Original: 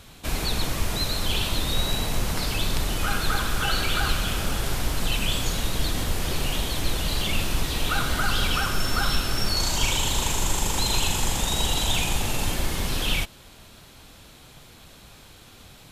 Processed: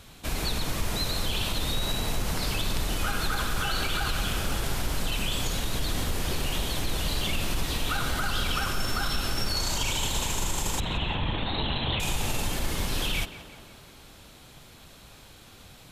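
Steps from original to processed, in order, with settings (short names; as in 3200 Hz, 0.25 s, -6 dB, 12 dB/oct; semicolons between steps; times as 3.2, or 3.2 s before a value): limiter -16 dBFS, peak gain reduction 7 dB; 10.8–12 LPC vocoder at 8 kHz whisper; on a send: tape echo 0.177 s, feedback 73%, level -11 dB, low-pass 2400 Hz; on the sum: gain -2 dB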